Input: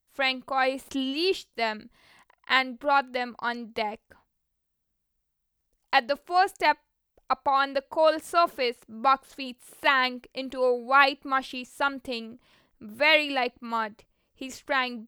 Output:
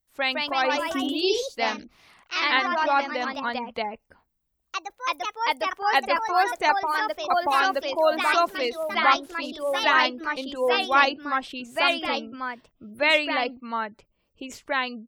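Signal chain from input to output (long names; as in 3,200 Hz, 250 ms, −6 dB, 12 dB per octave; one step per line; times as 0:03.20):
gate on every frequency bin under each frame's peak −30 dB strong
delay with pitch and tempo change per echo 182 ms, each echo +2 semitones, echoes 3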